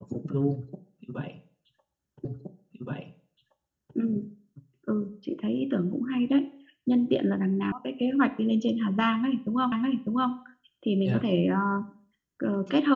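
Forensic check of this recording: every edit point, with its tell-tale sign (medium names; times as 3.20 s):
2.25 s: repeat of the last 1.72 s
7.72 s: sound stops dead
9.72 s: repeat of the last 0.6 s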